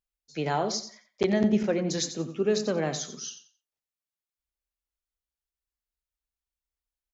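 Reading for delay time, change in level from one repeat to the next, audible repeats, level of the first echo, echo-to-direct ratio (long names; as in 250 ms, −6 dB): 89 ms, −12.5 dB, 2, −11.5 dB, −11.0 dB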